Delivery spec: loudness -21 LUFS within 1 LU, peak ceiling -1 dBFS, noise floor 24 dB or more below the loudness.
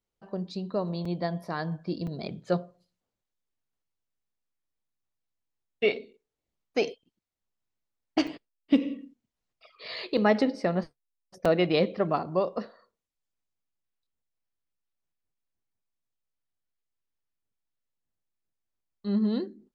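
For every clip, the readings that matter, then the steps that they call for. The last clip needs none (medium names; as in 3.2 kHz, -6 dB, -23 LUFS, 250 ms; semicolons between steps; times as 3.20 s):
dropouts 5; longest dropout 4.4 ms; loudness -29.5 LUFS; peak level -11.0 dBFS; loudness target -21.0 LUFS
-> interpolate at 1.05/2.07/8.27/10.17/11.45 s, 4.4 ms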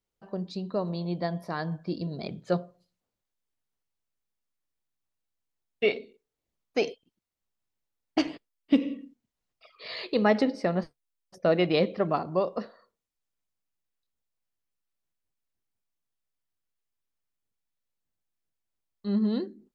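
dropouts 0; loudness -29.5 LUFS; peak level -11.0 dBFS; loudness target -21.0 LUFS
-> trim +8.5 dB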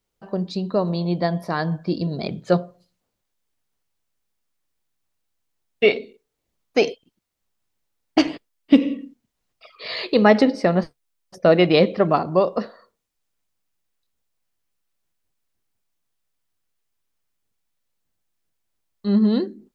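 loudness -21.0 LUFS; peak level -2.5 dBFS; noise floor -78 dBFS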